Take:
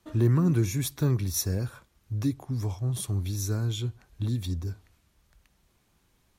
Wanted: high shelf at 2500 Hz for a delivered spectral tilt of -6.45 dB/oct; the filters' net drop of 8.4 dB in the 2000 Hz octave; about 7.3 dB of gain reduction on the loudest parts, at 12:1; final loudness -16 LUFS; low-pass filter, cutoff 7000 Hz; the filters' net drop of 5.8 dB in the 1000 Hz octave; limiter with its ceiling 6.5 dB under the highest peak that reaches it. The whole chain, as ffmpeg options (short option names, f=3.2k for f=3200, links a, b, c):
-af "lowpass=7k,equalizer=f=1k:t=o:g=-4,equalizer=f=2k:t=o:g=-6,highshelf=f=2.5k:g=-8.5,acompressor=threshold=-26dB:ratio=12,volume=18.5dB,alimiter=limit=-7dB:level=0:latency=1"